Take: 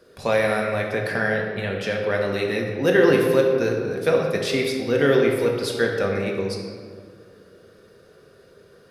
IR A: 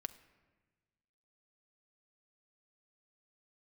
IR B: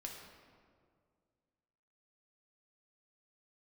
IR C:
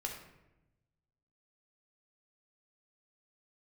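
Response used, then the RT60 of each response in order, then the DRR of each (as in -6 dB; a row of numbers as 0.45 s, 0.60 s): B; 1.3 s, 2.1 s, 0.95 s; 10.5 dB, -0.5 dB, 1.0 dB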